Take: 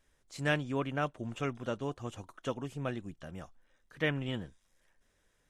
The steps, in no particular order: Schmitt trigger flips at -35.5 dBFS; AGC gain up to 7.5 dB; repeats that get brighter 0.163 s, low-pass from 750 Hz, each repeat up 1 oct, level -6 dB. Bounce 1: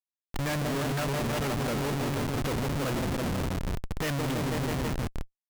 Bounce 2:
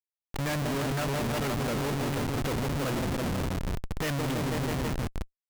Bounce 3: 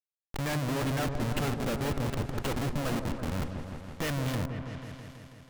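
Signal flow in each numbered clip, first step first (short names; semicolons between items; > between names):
repeats that get brighter > AGC > Schmitt trigger; AGC > repeats that get brighter > Schmitt trigger; AGC > Schmitt trigger > repeats that get brighter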